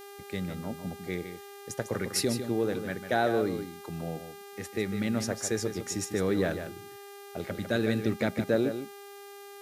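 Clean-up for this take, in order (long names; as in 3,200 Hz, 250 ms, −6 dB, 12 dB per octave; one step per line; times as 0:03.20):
hum removal 401.7 Hz, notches 38
broadband denoise 29 dB, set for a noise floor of −47 dBFS
echo removal 151 ms −9 dB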